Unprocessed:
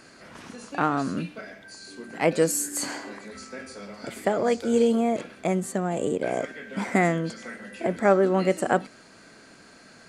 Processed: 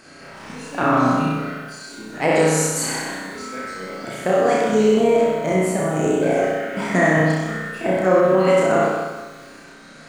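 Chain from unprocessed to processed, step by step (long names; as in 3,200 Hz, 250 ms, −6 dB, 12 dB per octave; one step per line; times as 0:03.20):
pitch shifter gated in a rhythm −1.5 semitones, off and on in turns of 276 ms
on a send: flutter between parallel walls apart 5.5 metres, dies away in 0.89 s
on the sum: spring reverb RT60 1.2 s, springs 39/51 ms, chirp 40 ms, DRR −0.5 dB
boost into a limiter +7.5 dB
feedback echo at a low word length 122 ms, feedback 55%, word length 6 bits, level −14 dB
level −5.5 dB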